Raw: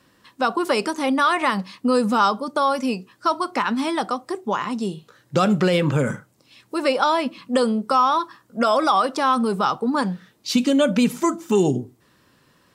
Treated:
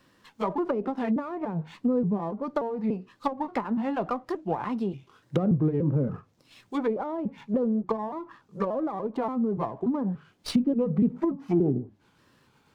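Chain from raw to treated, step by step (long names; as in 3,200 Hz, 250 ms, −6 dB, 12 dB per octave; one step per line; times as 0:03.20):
pitch shifter gated in a rhythm −3 semitones, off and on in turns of 290 ms
treble cut that deepens with the level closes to 430 Hz, closed at −17 dBFS
windowed peak hold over 3 samples
level −3.5 dB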